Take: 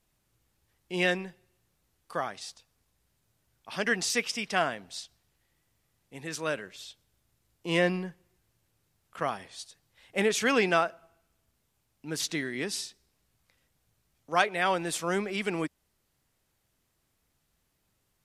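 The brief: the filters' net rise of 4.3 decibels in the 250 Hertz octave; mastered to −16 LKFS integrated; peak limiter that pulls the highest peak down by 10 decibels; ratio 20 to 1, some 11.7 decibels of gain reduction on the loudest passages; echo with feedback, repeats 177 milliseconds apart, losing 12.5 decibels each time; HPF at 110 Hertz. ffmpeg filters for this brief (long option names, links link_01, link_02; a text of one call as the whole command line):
ffmpeg -i in.wav -af "highpass=110,equalizer=frequency=250:width_type=o:gain=6.5,acompressor=threshold=-29dB:ratio=20,alimiter=level_in=4dB:limit=-24dB:level=0:latency=1,volume=-4dB,aecho=1:1:177|354|531:0.237|0.0569|0.0137,volume=23.5dB" out.wav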